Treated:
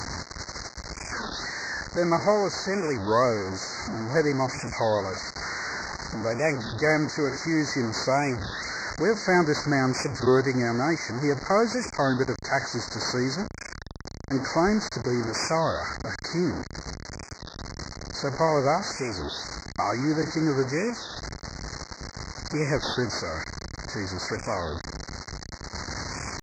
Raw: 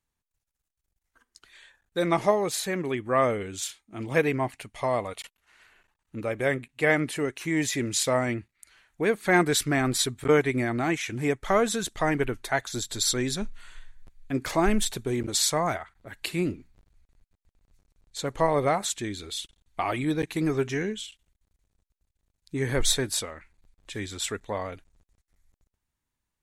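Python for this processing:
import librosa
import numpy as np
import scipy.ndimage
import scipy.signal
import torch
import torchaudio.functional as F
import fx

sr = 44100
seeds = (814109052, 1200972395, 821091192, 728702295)

y = fx.delta_mod(x, sr, bps=32000, step_db=-27.0)
y = scipy.signal.sosfilt(scipy.signal.butter(2, 59.0, 'highpass', fs=sr, output='sos'), y)
y = fx.cheby_harmonics(y, sr, harmonics=(5,), levels_db=(-21,), full_scale_db=-9.0)
y = scipy.signal.sosfilt(scipy.signal.cheby1(4, 1.0, [2100.0, 4200.0], 'bandstop', fs=sr, output='sos'), y)
y = fx.record_warp(y, sr, rpm=33.33, depth_cents=250.0)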